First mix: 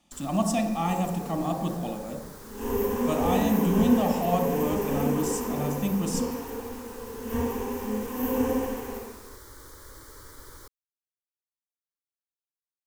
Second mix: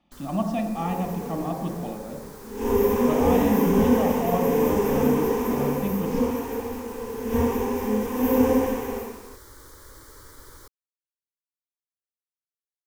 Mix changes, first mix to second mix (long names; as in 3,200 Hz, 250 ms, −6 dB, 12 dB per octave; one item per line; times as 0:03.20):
speech: add high-frequency loss of the air 270 metres
second sound: send +6.0 dB